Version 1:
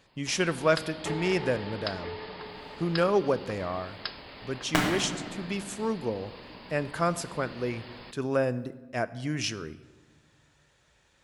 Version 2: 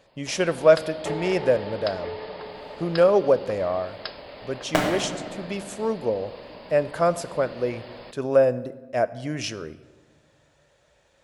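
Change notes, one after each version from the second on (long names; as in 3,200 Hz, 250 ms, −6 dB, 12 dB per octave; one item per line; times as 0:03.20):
master: add parametric band 580 Hz +11.5 dB 0.73 octaves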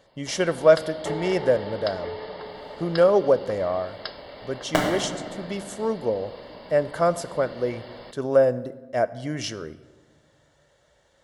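master: add Butterworth band-reject 2,500 Hz, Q 7.5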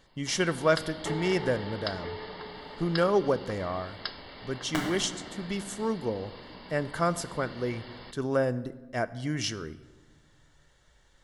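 speech: remove high-pass filter 74 Hz
second sound −6.5 dB
master: add parametric band 580 Hz −11.5 dB 0.73 octaves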